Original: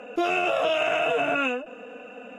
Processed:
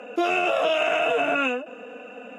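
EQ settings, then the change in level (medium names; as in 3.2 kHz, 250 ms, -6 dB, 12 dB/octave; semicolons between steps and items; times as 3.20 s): high-pass 170 Hz 24 dB/octave; +1.5 dB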